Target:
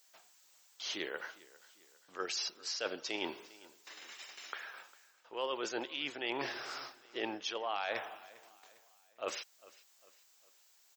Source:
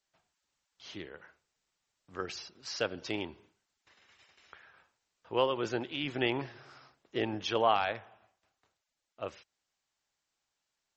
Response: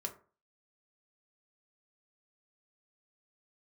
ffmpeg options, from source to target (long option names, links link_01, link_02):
-af "highpass=390,aemphasis=mode=production:type=50fm,areverse,acompressor=threshold=-46dB:ratio=6,areverse,aecho=1:1:402|804|1206:0.0891|0.0392|0.0173,volume=10.5dB"